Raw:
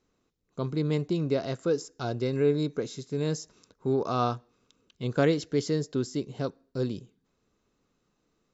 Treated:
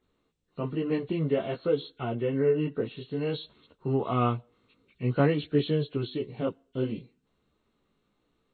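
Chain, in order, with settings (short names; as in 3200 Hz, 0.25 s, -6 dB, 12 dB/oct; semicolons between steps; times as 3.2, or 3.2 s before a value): nonlinear frequency compression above 1400 Hz 1.5:1; chorus voices 2, 0.54 Hz, delay 16 ms, depth 2.9 ms; 1.98–2.97 LPF 3100 Hz 24 dB/oct; gain +3.5 dB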